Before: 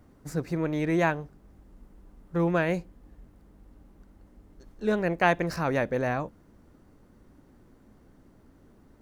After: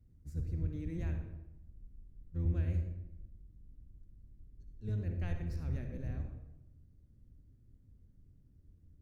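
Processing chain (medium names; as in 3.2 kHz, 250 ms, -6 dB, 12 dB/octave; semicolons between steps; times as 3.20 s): octave divider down 1 oct, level +3 dB; amplifier tone stack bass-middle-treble 10-0-1; reverberation RT60 0.95 s, pre-delay 50 ms, DRR 4.5 dB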